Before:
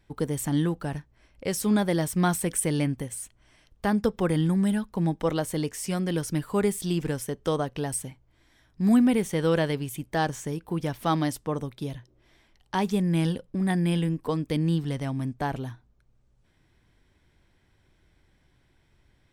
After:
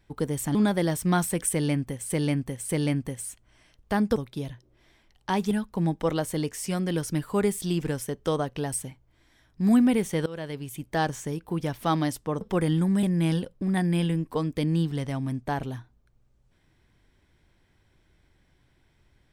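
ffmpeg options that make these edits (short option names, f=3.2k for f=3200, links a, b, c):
-filter_complex "[0:a]asplit=9[a][b][c][d][e][f][g][h][i];[a]atrim=end=0.552[j];[b]atrim=start=1.658:end=3.212[k];[c]atrim=start=2.618:end=3.212[l];[d]atrim=start=2.618:end=4.092[m];[e]atrim=start=11.608:end=12.962[n];[f]atrim=start=4.708:end=9.46,asetpts=PTS-STARTPTS,afade=t=out:st=4.748:d=0.004:c=hsin:silence=0.0944061[o];[g]atrim=start=9.46:end=11.612,asetpts=PTS-STARTPTS,afade=t=in:d=0.67:silence=0.0944061[p];[h]atrim=start=4.088:end=4.712[q];[i]atrim=start=12.958[r];[j][k]acrossfade=d=0.004:c1=hsin:c2=hsin[s];[s][l]acrossfade=d=0.004:c1=hsin:c2=hsin[t];[t][m]acrossfade=d=0.004:c1=hsin:c2=hsin[u];[u][n]acrossfade=d=0.004:c1=hsin:c2=hsin[v];[o][p]concat=n=2:v=0:a=1[w];[v][w]acrossfade=d=0.004:c1=hsin:c2=hsin[x];[x][q]acrossfade=d=0.004:c1=hsin:c2=hsin[y];[y][r]acrossfade=d=0.004:c1=hsin:c2=hsin"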